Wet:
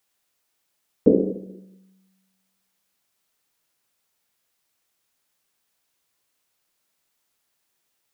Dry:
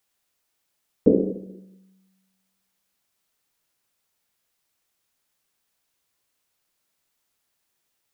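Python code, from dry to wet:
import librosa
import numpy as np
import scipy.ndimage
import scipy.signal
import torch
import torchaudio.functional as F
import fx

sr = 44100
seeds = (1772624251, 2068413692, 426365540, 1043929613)

y = fx.low_shelf(x, sr, hz=110.0, db=-4.5)
y = F.gain(torch.from_numpy(y), 1.5).numpy()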